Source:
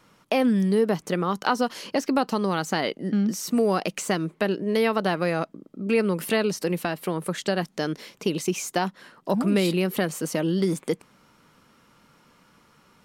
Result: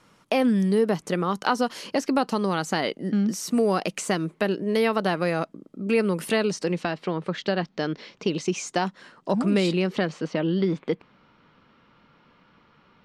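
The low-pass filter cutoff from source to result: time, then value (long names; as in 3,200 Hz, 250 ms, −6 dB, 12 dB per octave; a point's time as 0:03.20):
low-pass filter 24 dB per octave
0:06.17 12,000 Hz
0:07.14 4,800 Hz
0:07.97 4,800 Hz
0:08.85 8,600 Hz
0:09.58 8,600 Hz
0:10.35 4,000 Hz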